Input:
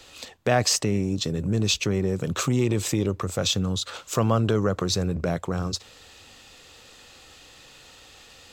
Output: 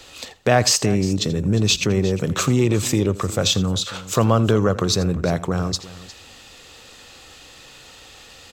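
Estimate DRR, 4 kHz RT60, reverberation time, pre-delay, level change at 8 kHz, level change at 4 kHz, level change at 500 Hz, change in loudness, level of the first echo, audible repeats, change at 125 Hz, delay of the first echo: no reverb audible, no reverb audible, no reverb audible, no reverb audible, +5.0 dB, +5.0 dB, +5.0 dB, +5.0 dB, −18.0 dB, 2, +5.0 dB, 83 ms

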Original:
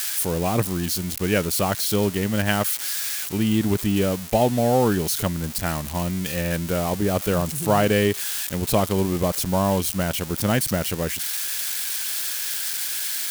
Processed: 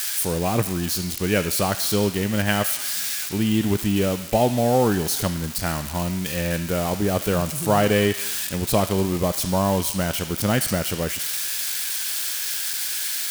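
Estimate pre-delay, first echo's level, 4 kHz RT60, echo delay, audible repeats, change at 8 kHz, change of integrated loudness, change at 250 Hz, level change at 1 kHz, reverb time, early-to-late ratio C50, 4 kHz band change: 3 ms, no echo audible, 0.95 s, no echo audible, no echo audible, +1.0 dB, +0.5 dB, 0.0 dB, +0.5 dB, 1.5 s, 9.0 dB, +1.5 dB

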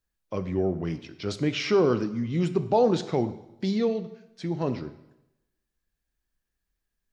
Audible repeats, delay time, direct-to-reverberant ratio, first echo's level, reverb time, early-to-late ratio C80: no echo audible, no echo audible, 11.0 dB, no echo audible, 0.95 s, 16.0 dB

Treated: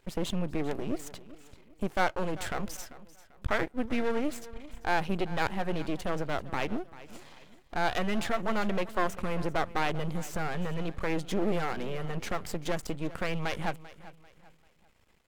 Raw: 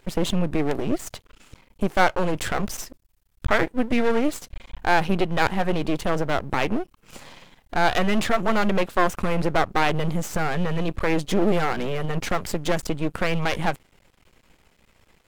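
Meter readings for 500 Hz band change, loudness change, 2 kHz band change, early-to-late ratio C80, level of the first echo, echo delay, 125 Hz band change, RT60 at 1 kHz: −8.5 dB, −8.5 dB, −8.5 dB, no reverb audible, −17.5 dB, 392 ms, −8.5 dB, no reverb audible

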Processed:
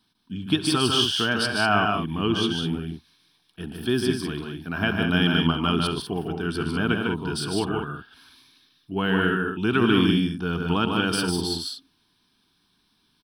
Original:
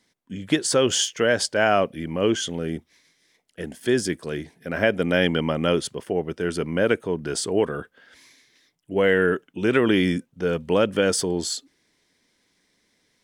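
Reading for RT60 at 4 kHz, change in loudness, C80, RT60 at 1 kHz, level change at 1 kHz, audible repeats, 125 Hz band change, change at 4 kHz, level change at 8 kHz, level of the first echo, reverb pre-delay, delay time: no reverb audible, −1.0 dB, no reverb audible, no reverb audible, +2.0 dB, 4, +3.5 dB, +3.5 dB, −7.0 dB, −18.0 dB, no reverb audible, 68 ms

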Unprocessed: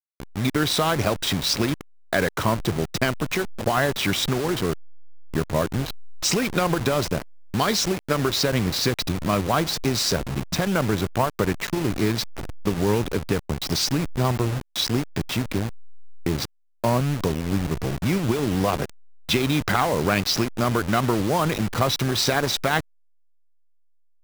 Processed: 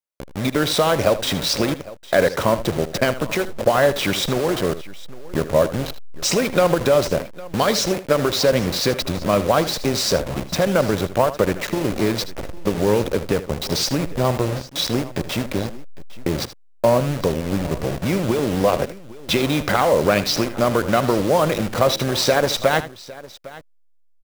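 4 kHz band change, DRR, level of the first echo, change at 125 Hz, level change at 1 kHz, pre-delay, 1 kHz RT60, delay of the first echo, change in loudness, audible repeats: +1.5 dB, no reverb audible, −14.0 dB, 0.0 dB, +3.0 dB, no reverb audible, no reverb audible, 78 ms, +3.5 dB, 2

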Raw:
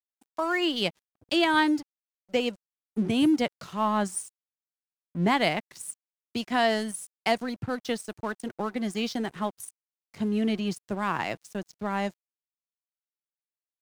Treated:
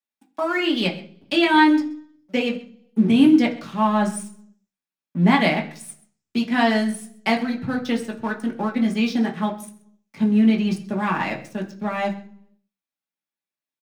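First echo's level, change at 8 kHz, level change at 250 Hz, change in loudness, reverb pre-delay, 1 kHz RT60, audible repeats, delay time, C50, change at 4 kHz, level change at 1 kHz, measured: −19.5 dB, −0.5 dB, +9.0 dB, +7.0 dB, 3 ms, 0.45 s, 1, 129 ms, 12.0 dB, +3.0 dB, +5.5 dB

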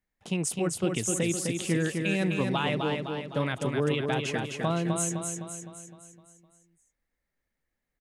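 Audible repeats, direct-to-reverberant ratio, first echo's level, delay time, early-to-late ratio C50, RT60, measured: 6, no reverb audible, −4.5 dB, 256 ms, no reverb audible, no reverb audible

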